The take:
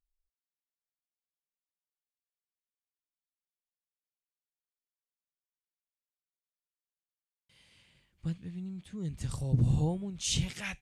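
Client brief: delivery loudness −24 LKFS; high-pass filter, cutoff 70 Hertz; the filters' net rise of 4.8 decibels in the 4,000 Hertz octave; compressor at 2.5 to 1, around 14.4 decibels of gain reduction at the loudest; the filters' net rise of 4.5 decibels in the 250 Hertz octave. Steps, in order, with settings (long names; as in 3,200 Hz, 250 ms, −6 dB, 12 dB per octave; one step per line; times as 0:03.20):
high-pass filter 70 Hz
parametric band 250 Hz +8 dB
parametric band 4,000 Hz +6 dB
downward compressor 2.5 to 1, threshold −42 dBFS
level +17 dB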